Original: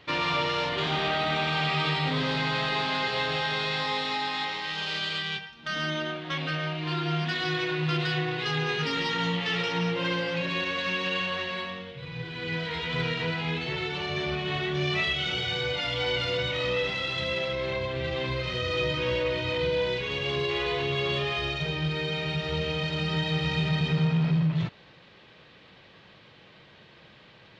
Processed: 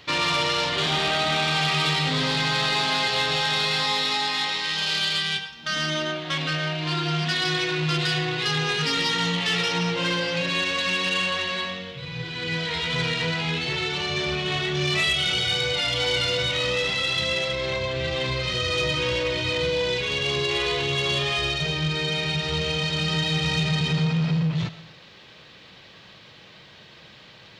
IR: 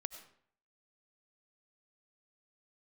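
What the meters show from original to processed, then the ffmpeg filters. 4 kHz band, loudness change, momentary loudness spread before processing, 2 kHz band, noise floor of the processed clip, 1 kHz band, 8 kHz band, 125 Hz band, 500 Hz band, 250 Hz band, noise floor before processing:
+7.0 dB, +4.5 dB, 5 LU, +4.0 dB, -48 dBFS, +3.0 dB, n/a, +2.5 dB, +2.0 dB, +2.0 dB, -54 dBFS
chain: -filter_complex "[0:a]aeval=exprs='0.168*(cos(1*acos(clip(val(0)/0.168,-1,1)))-cos(1*PI/2))+0.00944*(cos(5*acos(clip(val(0)/0.168,-1,1)))-cos(5*PI/2))':c=same,bass=f=250:g=4,treble=f=4k:g=10,asplit=2[a][b];[1:a]atrim=start_sample=2205,lowshelf=f=290:g=-11[c];[b][c]afir=irnorm=-1:irlink=0,volume=5.5dB[d];[a][d]amix=inputs=2:normalize=0,volume=-5.5dB"

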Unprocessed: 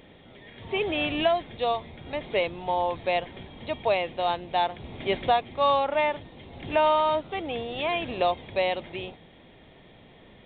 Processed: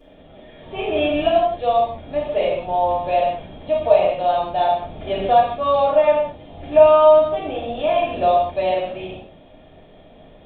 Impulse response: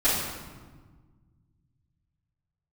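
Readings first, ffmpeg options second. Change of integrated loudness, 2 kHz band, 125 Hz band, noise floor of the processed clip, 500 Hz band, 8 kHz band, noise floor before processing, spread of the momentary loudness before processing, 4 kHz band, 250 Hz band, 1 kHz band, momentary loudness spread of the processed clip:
+8.5 dB, -0.5 dB, +4.5 dB, -47 dBFS, +11.0 dB, n/a, -53 dBFS, 13 LU, 0.0 dB, +5.5 dB, +7.0 dB, 14 LU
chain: -filter_complex "[0:a]equalizer=f=630:t=o:w=0.33:g=9,equalizer=f=2k:t=o:w=0.33:g=-8,equalizer=f=4k:t=o:w=0.33:g=-5[a];[1:a]atrim=start_sample=2205,afade=t=out:st=0.25:d=0.01,atrim=end_sample=11466[b];[a][b]afir=irnorm=-1:irlink=0,volume=-11dB"

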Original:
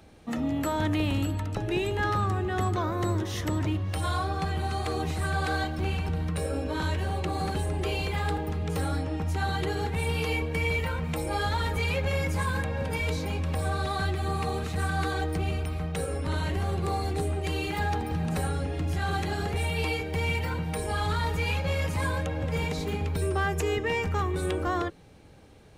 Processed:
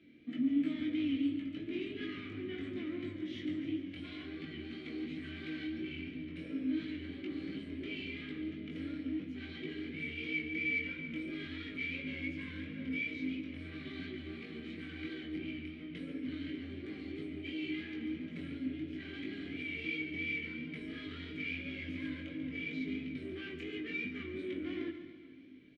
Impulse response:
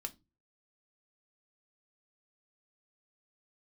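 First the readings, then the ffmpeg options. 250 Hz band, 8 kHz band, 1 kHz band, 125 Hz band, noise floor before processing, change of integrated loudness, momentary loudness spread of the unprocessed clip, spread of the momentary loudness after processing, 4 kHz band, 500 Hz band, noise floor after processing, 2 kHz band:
-4.0 dB, under -30 dB, -31.0 dB, -21.5 dB, -34 dBFS, -10.5 dB, 3 LU, 9 LU, -10.5 dB, -15.5 dB, -48 dBFS, -7.5 dB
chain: -filter_complex "[0:a]asoftclip=type=tanh:threshold=-30dB,asplit=3[a][b][c];[a]bandpass=f=270:t=q:w=8,volume=0dB[d];[b]bandpass=f=2.29k:t=q:w=8,volume=-6dB[e];[c]bandpass=f=3.01k:t=q:w=8,volume=-9dB[f];[d][e][f]amix=inputs=3:normalize=0,aecho=1:1:141|282|423|564|705|846|987:0.299|0.17|0.097|0.0553|0.0315|0.018|0.0102,flanger=delay=19:depth=3.9:speed=2.9,asplit=2[g][h];[1:a]atrim=start_sample=2205,asetrate=33516,aresample=44100,lowpass=4.8k[i];[h][i]afir=irnorm=-1:irlink=0,volume=6.5dB[j];[g][j]amix=inputs=2:normalize=0,volume=1dB"

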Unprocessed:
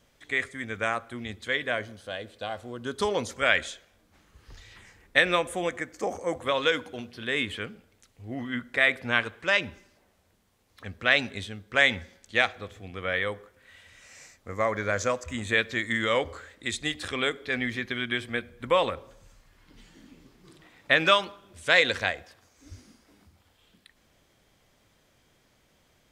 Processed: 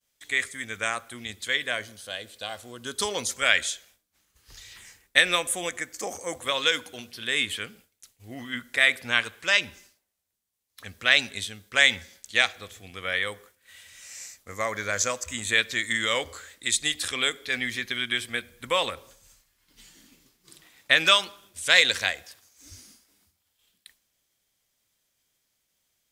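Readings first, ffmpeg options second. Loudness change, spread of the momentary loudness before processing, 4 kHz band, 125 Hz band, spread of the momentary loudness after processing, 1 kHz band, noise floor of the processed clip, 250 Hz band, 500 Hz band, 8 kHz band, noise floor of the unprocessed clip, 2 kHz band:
+2.5 dB, 16 LU, +6.0 dB, -5.5 dB, 18 LU, -2.0 dB, -76 dBFS, -5.0 dB, -4.5 dB, +12.0 dB, -66 dBFS, +1.5 dB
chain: -af "crystalizer=i=7:c=0,agate=range=-33dB:threshold=-44dB:ratio=3:detection=peak,volume=-5.5dB"

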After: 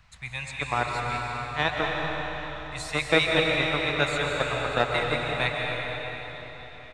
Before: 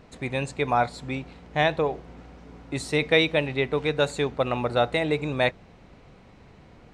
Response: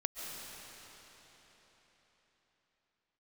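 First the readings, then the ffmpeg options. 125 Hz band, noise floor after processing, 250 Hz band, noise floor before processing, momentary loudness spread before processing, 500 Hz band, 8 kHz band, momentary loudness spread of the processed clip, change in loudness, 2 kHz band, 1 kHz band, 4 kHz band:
-2.0 dB, -44 dBFS, -4.0 dB, -52 dBFS, 13 LU, -3.5 dB, +1.5 dB, 13 LU, -1.5 dB, +2.5 dB, -0.5 dB, +2.0 dB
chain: -filter_complex "[0:a]acrossover=split=130|950|1500[a][b][c][d];[b]acrusher=bits=2:mix=0:aa=0.5[e];[c]aecho=1:1:102:0.531[f];[a][e][f][d]amix=inputs=4:normalize=0[g];[1:a]atrim=start_sample=2205[h];[g][h]afir=irnorm=-1:irlink=0"

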